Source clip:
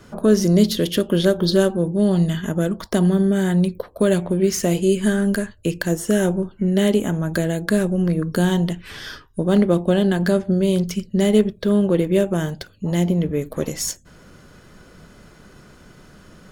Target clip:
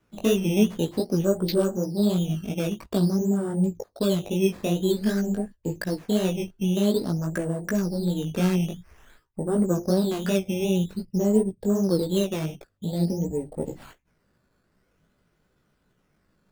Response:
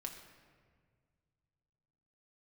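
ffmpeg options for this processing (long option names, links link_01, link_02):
-af "afwtdn=0.0447,acrusher=samples=10:mix=1:aa=0.000001:lfo=1:lforange=10:lforate=0.5,flanger=delay=15.5:depth=4.6:speed=2.7,volume=-3dB"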